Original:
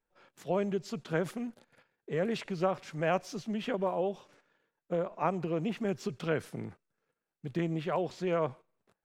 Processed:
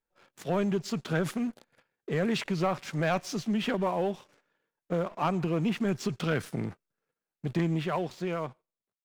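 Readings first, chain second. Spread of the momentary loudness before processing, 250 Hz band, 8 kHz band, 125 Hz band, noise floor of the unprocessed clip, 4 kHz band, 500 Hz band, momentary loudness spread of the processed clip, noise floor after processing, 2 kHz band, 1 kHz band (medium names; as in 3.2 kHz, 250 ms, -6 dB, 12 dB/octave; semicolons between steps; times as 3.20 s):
9 LU, +5.0 dB, +7.0 dB, +6.0 dB, under -85 dBFS, +6.5 dB, +0.5 dB, 8 LU, under -85 dBFS, +4.5 dB, +2.5 dB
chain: fade out at the end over 1.44 s; dynamic bell 510 Hz, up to -6 dB, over -42 dBFS, Q 1.1; waveshaping leveller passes 2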